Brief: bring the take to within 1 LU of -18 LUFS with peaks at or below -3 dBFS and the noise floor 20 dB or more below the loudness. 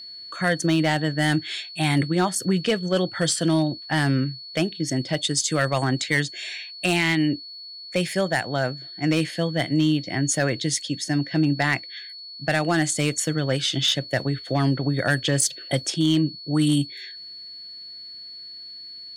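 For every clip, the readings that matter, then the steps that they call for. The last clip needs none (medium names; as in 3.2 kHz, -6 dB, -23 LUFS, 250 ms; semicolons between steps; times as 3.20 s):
clipped samples 0.3%; clipping level -12.5 dBFS; steady tone 4.4 kHz; tone level -37 dBFS; loudness -23.5 LUFS; peak level -12.5 dBFS; loudness target -18.0 LUFS
-> clip repair -12.5 dBFS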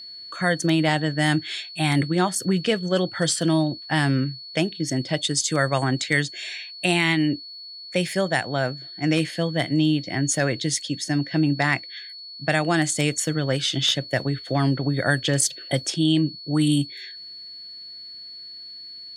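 clipped samples 0.0%; steady tone 4.4 kHz; tone level -37 dBFS
-> band-stop 4.4 kHz, Q 30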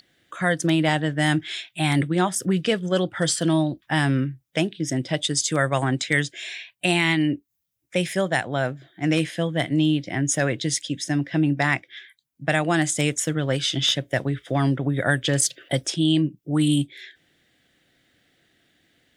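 steady tone not found; loudness -23.0 LUFS; peak level -5.5 dBFS; loudness target -18.0 LUFS
-> trim +5 dB; peak limiter -3 dBFS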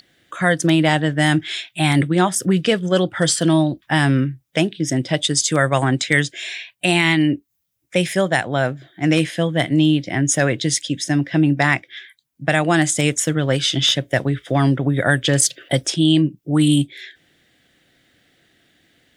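loudness -18.5 LUFS; peak level -3.0 dBFS; noise floor -68 dBFS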